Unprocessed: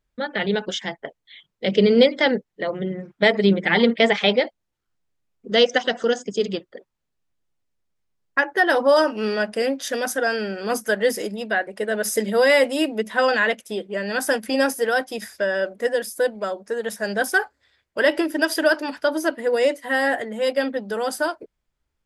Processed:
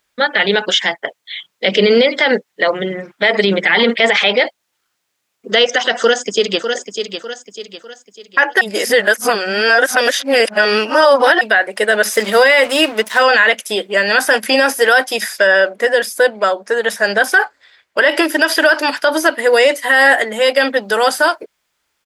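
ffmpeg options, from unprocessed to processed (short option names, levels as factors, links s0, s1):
-filter_complex "[0:a]asplit=2[s0][s1];[s1]afade=t=in:st=5.98:d=0.01,afade=t=out:st=6.67:d=0.01,aecho=0:1:600|1200|1800|2400:0.354813|0.141925|0.0567701|0.0227081[s2];[s0][s2]amix=inputs=2:normalize=0,asettb=1/sr,asplit=3[s3][s4][s5];[s3]atrim=end=12.124[s6];[s4]atrim=start=12.12:end=13.23,asetpts=PTS-STARTPTS,afade=t=in:d=0.004:c=qsin,afade=t=out:st=1.106:d=0.004:c=qsin,aeval=exprs='sgn(val(0))*max(abs(val(0))-0.0106,0)':c=same[s7];[s5]atrim=start=13.226[s8];[s6][s7]acrossfade=d=0.004:c1=hsin:c2=qsin[s9];[s9][s8]acrossfade=d=0.004:c1=qsin:c2=hsin,asettb=1/sr,asplit=3[s10][s11][s12];[s10]atrim=end=15.474[s13];[s11]atrim=start=15.47:end=18.09,asetpts=PTS-STARTPTS,afade=t=in:d=0.004:c=qsin,afade=t=out:st=2.616:d=0.004:c=qsin,highshelf=f=5200:g=-10[s14];[s12]atrim=start=18.086[s15];[s13][s14]acrossfade=d=0.004:c1=hsin:c2=qsin[s16];[s16][s15]acrossfade=d=0.004:c1=qsin:c2=hsin,asplit=3[s17][s18][s19];[s17]atrim=end=8.612[s20];[s18]atrim=start=8.608:end=11.412,asetpts=PTS-STARTPTS,areverse[s21];[s19]atrim=start=11.408[s22];[s20][s21]acrossfade=d=0.004:c1=hsin:c2=hsin[s23];[s23][s22]acrossfade=d=0.004:c1=hsin:c2=hsin,acrossover=split=3600[s24][s25];[s25]acompressor=threshold=0.01:ratio=4:attack=1:release=60[s26];[s24][s26]amix=inputs=2:normalize=0,highpass=f=1300:p=1,alimiter=level_in=9.44:limit=0.891:release=50:level=0:latency=1,volume=0.891"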